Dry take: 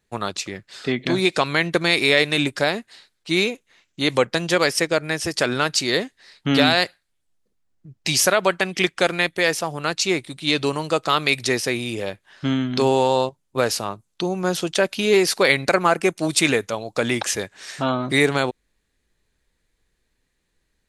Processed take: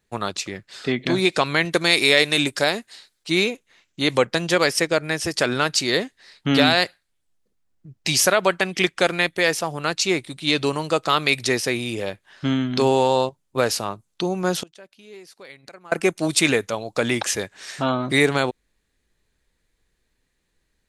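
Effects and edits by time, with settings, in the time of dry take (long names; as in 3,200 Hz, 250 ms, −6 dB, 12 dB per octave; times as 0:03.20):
0:01.65–0:03.30: bass and treble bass −3 dB, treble +6 dB
0:14.61–0:15.92: gate with flip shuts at −19 dBFS, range −26 dB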